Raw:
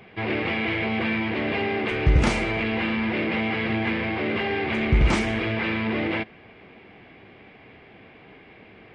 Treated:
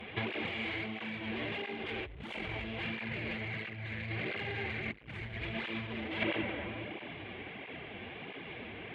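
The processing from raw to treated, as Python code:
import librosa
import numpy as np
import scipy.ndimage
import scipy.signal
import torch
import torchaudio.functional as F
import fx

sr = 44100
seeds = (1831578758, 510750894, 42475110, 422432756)

y = fx.graphic_eq(x, sr, hz=(125, 250, 1000, 2000, 4000, 8000), db=(11, -8, -5, 5, -8, -4), at=(2.82, 5.45))
y = fx.rev_freeverb(y, sr, rt60_s=2.5, hf_ratio=0.5, predelay_ms=90, drr_db=10.5)
y = fx.tube_stage(y, sr, drive_db=23.0, bias=0.55)
y = fx.over_compress(y, sr, threshold_db=-34.0, ratio=-0.5)
y = fx.high_shelf_res(y, sr, hz=4300.0, db=-8.0, q=3.0)
y = fx.notch(y, sr, hz=1300.0, q=26.0)
y = fx.flanger_cancel(y, sr, hz=1.5, depth_ms=7.5)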